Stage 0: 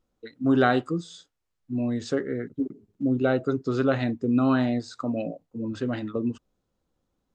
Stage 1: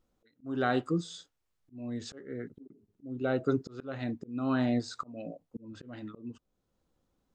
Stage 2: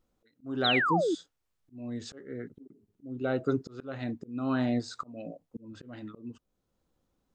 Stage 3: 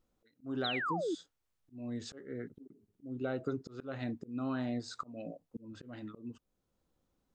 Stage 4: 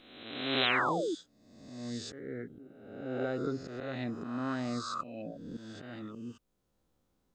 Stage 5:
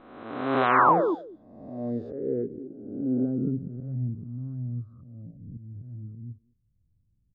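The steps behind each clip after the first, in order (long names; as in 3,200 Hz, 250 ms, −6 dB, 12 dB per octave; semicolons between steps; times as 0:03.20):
volume swells 645 ms
sound drawn into the spectrogram fall, 0:00.64–0:01.15, 290–4,200 Hz −27 dBFS
downward compressor 6 to 1, threshold −29 dBFS, peak gain reduction 8 dB; level −2.5 dB
peak hold with a rise ahead of every peak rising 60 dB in 1.11 s
far-end echo of a speakerphone 210 ms, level −18 dB; low-pass filter sweep 1,100 Hz → 110 Hz, 0:01.11–0:04.37; level +7 dB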